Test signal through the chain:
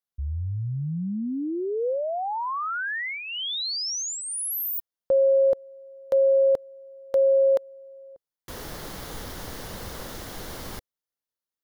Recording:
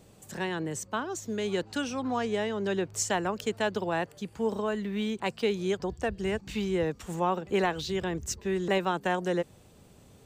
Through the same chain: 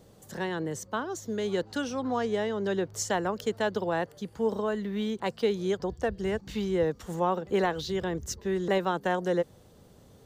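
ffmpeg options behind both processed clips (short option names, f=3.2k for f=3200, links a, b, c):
-af "equalizer=f=500:t=o:w=0.33:g=4,equalizer=f=2.5k:t=o:w=0.33:g=-8,equalizer=f=8k:t=o:w=0.33:g=-6"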